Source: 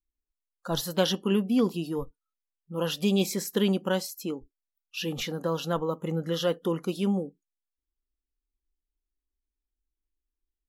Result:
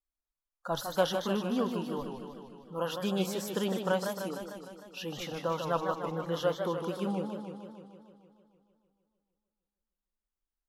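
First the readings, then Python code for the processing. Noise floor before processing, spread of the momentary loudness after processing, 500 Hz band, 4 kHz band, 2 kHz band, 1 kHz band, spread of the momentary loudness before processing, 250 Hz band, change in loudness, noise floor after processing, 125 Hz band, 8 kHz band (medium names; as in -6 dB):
under -85 dBFS, 15 LU, -2.5 dB, -6.5 dB, -2.0 dB, +2.0 dB, 11 LU, -6.5 dB, -5.0 dB, under -85 dBFS, -6.5 dB, -6.5 dB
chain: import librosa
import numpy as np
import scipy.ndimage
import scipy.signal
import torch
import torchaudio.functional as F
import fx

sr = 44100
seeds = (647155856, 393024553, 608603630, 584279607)

y = fx.band_shelf(x, sr, hz=910.0, db=8.5, octaves=1.7)
y = fx.echo_warbled(y, sr, ms=152, feedback_pct=66, rate_hz=2.8, cents=166, wet_db=-6.5)
y = y * librosa.db_to_amplitude(-8.0)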